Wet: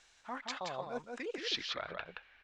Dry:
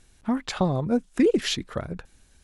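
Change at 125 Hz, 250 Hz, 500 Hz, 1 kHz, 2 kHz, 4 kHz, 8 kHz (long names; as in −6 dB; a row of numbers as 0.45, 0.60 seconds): −27.0, −24.0, −15.5, −8.0, −5.5, −6.0, −13.5 decibels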